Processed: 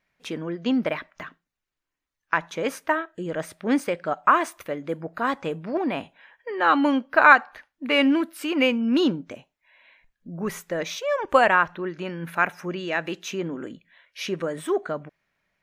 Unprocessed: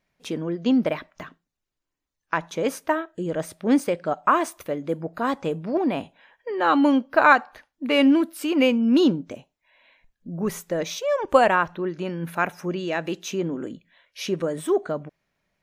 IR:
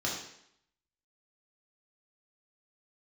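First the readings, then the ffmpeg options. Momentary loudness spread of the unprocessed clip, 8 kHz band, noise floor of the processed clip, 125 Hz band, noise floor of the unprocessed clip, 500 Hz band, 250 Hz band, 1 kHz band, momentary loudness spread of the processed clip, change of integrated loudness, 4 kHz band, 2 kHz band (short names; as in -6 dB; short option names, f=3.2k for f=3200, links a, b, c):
14 LU, -2.5 dB, -85 dBFS, -3.5 dB, -83 dBFS, -2.5 dB, -3.0 dB, +0.5 dB, 15 LU, -0.5 dB, +1.0 dB, +3.5 dB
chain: -af "equalizer=f=1.8k:t=o:w=1.8:g=7.5,volume=-3.5dB"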